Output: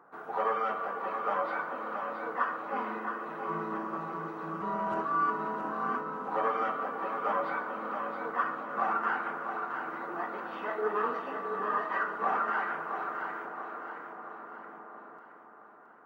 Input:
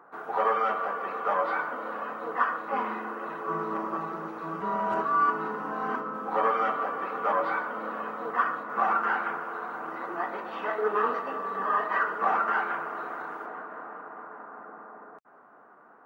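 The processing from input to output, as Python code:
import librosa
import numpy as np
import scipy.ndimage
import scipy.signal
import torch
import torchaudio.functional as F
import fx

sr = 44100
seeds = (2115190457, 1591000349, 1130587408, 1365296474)

y = fx.low_shelf(x, sr, hz=200.0, db=6.0)
y = fx.echo_thinned(y, sr, ms=670, feedback_pct=47, hz=230.0, wet_db=-7.0)
y = y * 10.0 ** (-5.0 / 20.0)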